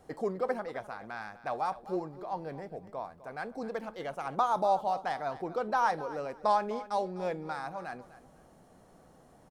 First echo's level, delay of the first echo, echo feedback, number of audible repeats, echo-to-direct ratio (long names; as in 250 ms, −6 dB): −16.0 dB, 253 ms, 23%, 2, −16.0 dB